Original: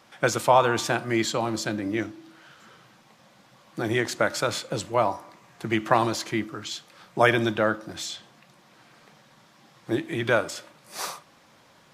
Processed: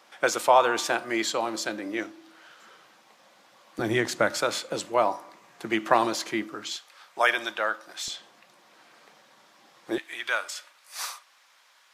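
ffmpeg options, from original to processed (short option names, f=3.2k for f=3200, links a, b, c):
-af "asetnsamples=n=441:p=0,asendcmd='3.79 highpass f 110;4.37 highpass f 260;6.76 highpass f 790;8.08 highpass f 340;9.98 highpass f 1200',highpass=370"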